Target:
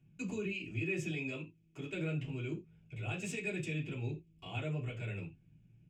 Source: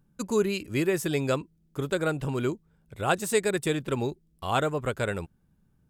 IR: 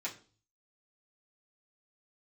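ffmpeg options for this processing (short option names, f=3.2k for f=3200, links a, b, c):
-filter_complex "[0:a]firequalizer=gain_entry='entry(130,0);entry(220,-12);entry(670,-17);entry(970,-24);entry(1800,-18);entry(2600,0);entry(4000,-20);entry(5900,-16);entry(11000,-30)':delay=0.05:min_phase=1,acompressor=threshold=-39dB:ratio=6,asettb=1/sr,asplit=3[a][b][c];[a]atrim=end=1.094[d];[b]atrim=start=1.09:end=1.9,asetpts=PTS-STARTPTS,afade=t=in:d=0.004:c=qsin,afade=t=out:st=0.806:d=0.004:c=qsin,bass=f=250:g=-7,treble=f=4k:g=0[e];[c]atrim=start=1.896[f];[d][e]acrossfade=d=0.004:c1=hsin:c2=qsin[g];[g][f]acrossfade=d=0.004:c1=qsin:c2=hsin,alimiter=level_in=16.5dB:limit=-24dB:level=0:latency=1:release=26,volume=-16.5dB[h];[1:a]atrim=start_sample=2205,afade=t=out:st=0.15:d=0.01,atrim=end_sample=7056[i];[h][i]afir=irnorm=-1:irlink=0,volume=10.5dB"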